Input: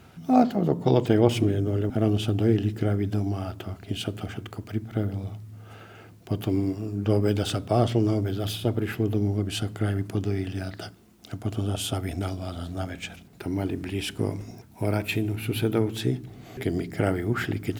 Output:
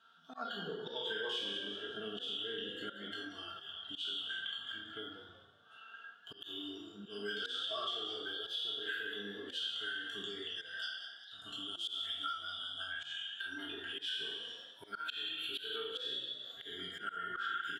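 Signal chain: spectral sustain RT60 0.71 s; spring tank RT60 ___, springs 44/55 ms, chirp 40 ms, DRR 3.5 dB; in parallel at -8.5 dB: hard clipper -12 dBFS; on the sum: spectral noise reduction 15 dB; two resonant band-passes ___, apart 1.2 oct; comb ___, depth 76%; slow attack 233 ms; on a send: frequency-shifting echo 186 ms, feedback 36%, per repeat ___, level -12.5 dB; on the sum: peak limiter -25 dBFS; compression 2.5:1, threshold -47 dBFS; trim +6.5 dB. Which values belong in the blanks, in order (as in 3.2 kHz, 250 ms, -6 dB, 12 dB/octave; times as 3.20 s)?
1.1 s, 2.2 kHz, 4.4 ms, +52 Hz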